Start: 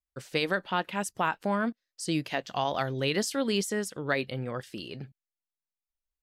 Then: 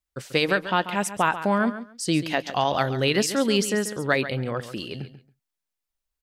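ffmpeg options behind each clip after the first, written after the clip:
-af "aecho=1:1:138|276:0.237|0.0427,volume=2"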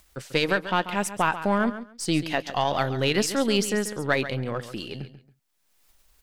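-af "aeval=exprs='if(lt(val(0),0),0.708*val(0),val(0))':c=same,acompressor=mode=upward:threshold=0.0112:ratio=2.5"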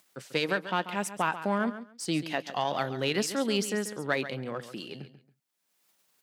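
-af "highpass=f=140:w=0.5412,highpass=f=140:w=1.3066,volume=0.562"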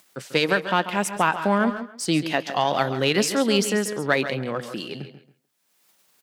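-filter_complex "[0:a]asplit=2[s0][s1];[s1]adelay=160,highpass=300,lowpass=3400,asoftclip=type=hard:threshold=0.0794,volume=0.251[s2];[s0][s2]amix=inputs=2:normalize=0,volume=2.37"

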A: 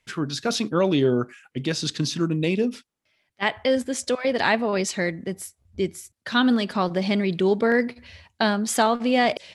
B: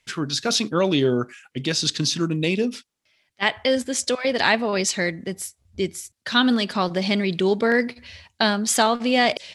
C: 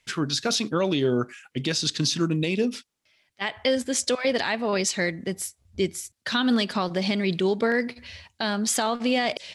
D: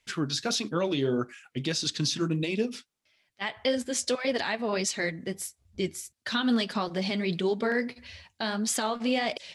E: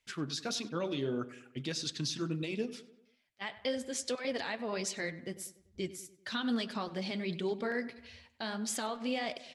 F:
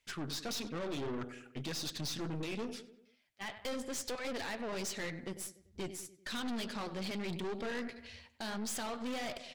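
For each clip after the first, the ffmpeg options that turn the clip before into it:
-af "equalizer=f=5400:t=o:w=2.6:g=6.5"
-af "alimiter=limit=0.211:level=0:latency=1:release=193"
-af "flanger=delay=2.4:depth=6.6:regen=-50:speed=1.6:shape=triangular"
-filter_complex "[0:a]asplit=2[s0][s1];[s1]adelay=97,lowpass=f=2800:p=1,volume=0.168,asplit=2[s2][s3];[s3]adelay=97,lowpass=f=2800:p=1,volume=0.52,asplit=2[s4][s5];[s5]adelay=97,lowpass=f=2800:p=1,volume=0.52,asplit=2[s6][s7];[s7]adelay=97,lowpass=f=2800:p=1,volume=0.52,asplit=2[s8][s9];[s9]adelay=97,lowpass=f=2800:p=1,volume=0.52[s10];[s0][s2][s4][s6][s8][s10]amix=inputs=6:normalize=0,volume=0.422"
-af "aeval=exprs='(tanh(100*val(0)+0.55)-tanh(0.55))/100':c=same,volume=1.58"

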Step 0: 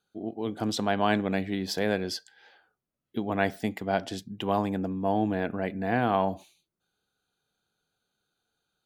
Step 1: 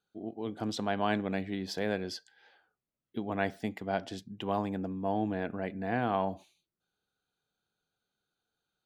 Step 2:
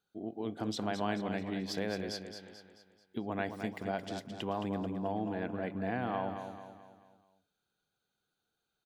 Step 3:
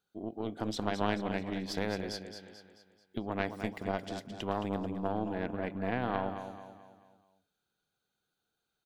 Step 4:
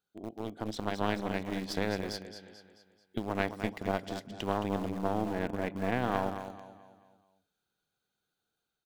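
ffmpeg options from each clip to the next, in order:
-af "highshelf=f=9700:g=-9.5,volume=0.562"
-filter_complex "[0:a]acompressor=threshold=0.02:ratio=2,asplit=2[s0][s1];[s1]aecho=0:1:218|436|654|872|1090:0.398|0.179|0.0806|0.0363|0.0163[s2];[s0][s2]amix=inputs=2:normalize=0"
-af "aeval=exprs='0.112*(cos(1*acos(clip(val(0)/0.112,-1,1)))-cos(1*PI/2))+0.0562*(cos(2*acos(clip(val(0)/0.112,-1,1)))-cos(2*PI/2))':c=same"
-filter_complex "[0:a]dynaudnorm=f=860:g=3:m=1.5,asplit=2[s0][s1];[s1]aeval=exprs='val(0)*gte(abs(val(0)),0.0316)':c=same,volume=0.422[s2];[s0][s2]amix=inputs=2:normalize=0,volume=0.631"

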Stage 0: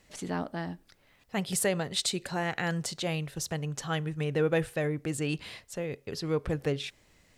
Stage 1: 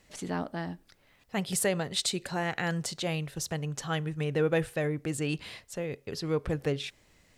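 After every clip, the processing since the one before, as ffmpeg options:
-af anull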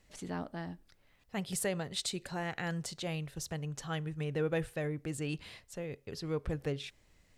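-af "lowshelf=f=74:g=9.5,volume=0.473"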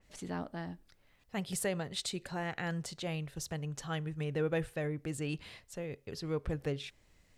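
-af "adynamicequalizer=threshold=0.00251:dfrequency=3700:dqfactor=0.7:tfrequency=3700:tqfactor=0.7:attack=5:release=100:ratio=0.375:range=1.5:mode=cutabove:tftype=highshelf"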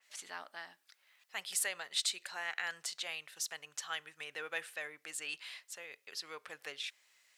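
-af "highpass=1400,volume=1.68"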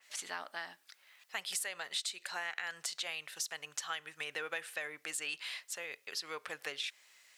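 -af "acompressor=threshold=0.00891:ratio=6,volume=2"

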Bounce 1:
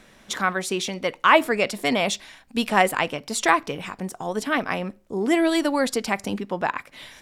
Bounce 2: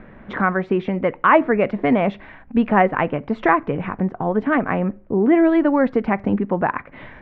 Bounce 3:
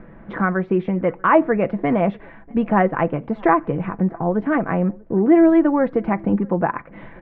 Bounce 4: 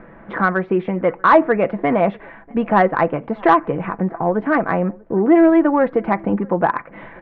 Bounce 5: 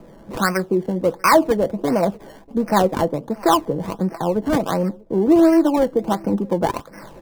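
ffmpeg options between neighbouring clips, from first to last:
-filter_complex "[0:a]lowpass=f=2000:w=0.5412,lowpass=f=2000:w=1.3066,lowshelf=f=390:g=8,asplit=2[s0][s1];[s1]acompressor=threshold=0.0501:ratio=6,volume=1.33[s2];[s0][s2]amix=inputs=2:normalize=0,volume=0.891"
-filter_complex "[0:a]lowpass=f=1300:p=1,aecho=1:1:6:0.38,asplit=2[s0][s1];[s1]adelay=641.4,volume=0.0447,highshelf=f=4000:g=-14.4[s2];[s0][s2]amix=inputs=2:normalize=0"
-filter_complex "[0:a]asplit=2[s0][s1];[s1]highpass=f=720:p=1,volume=3.16,asoftclip=type=tanh:threshold=0.841[s2];[s0][s2]amix=inputs=2:normalize=0,lowpass=f=2200:p=1,volume=0.501,volume=1.19"
-filter_complex "[0:a]bandreject=f=710:w=12,acrossover=split=180|1100[s0][s1][s2];[s2]acrusher=samples=24:mix=1:aa=0.000001:lfo=1:lforange=24:lforate=1.4[s3];[s0][s1][s3]amix=inputs=3:normalize=0,volume=0.891"

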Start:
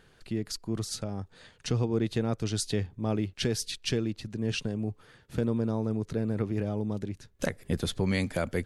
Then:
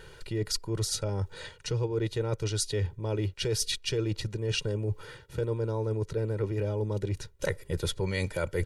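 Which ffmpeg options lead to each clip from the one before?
-af "aecho=1:1:2.1:0.85,areverse,acompressor=threshold=0.0178:ratio=6,areverse,volume=2.51"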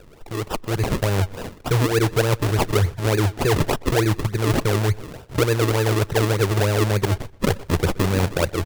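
-filter_complex "[0:a]acrusher=samples=40:mix=1:aa=0.000001:lfo=1:lforange=40:lforate=3.4,dynaudnorm=f=470:g=3:m=2.66,asplit=2[s0][s1];[s1]adelay=124,lowpass=f=5000:p=1,volume=0.0794,asplit=2[s2][s3];[s3]adelay=124,lowpass=f=5000:p=1,volume=0.26[s4];[s0][s2][s4]amix=inputs=3:normalize=0,volume=1.26"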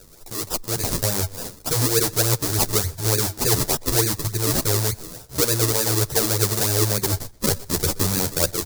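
-filter_complex "[0:a]aexciter=amount=4.4:drive=7.3:freq=4100,asplit=2[s0][s1];[s1]adelay=10.4,afreqshift=2.4[s2];[s0][s2]amix=inputs=2:normalize=1,volume=0.891"

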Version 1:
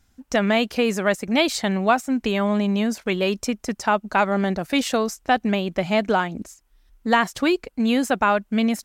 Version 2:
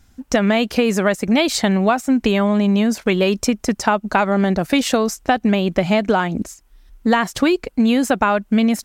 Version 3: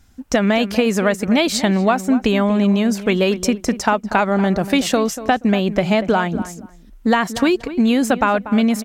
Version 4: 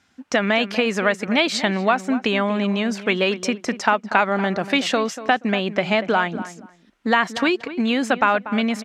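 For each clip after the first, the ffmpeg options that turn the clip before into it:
-af "lowshelf=f=430:g=3,acompressor=threshold=0.112:ratio=6,volume=2.24"
-filter_complex "[0:a]asplit=2[s0][s1];[s1]adelay=239,lowpass=f=1800:p=1,volume=0.224,asplit=2[s2][s3];[s3]adelay=239,lowpass=f=1800:p=1,volume=0.2[s4];[s0][s2][s4]amix=inputs=3:normalize=0"
-af "crystalizer=i=10:c=0,highpass=170,lowpass=2200,volume=0.531"

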